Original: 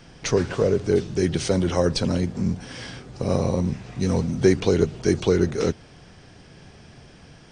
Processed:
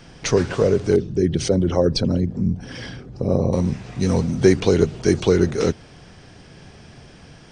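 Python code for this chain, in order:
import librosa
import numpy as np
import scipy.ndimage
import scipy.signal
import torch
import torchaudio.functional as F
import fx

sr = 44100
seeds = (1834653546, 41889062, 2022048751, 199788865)

y = fx.envelope_sharpen(x, sr, power=1.5, at=(0.96, 3.53))
y = y * 10.0 ** (3.0 / 20.0)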